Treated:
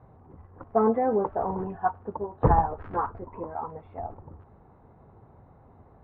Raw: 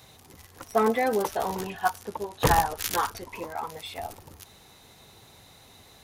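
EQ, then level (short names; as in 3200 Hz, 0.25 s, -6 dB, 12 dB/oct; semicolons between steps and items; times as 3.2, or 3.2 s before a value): LPF 1200 Hz 24 dB/oct; low shelf 200 Hz +5.5 dB; 0.0 dB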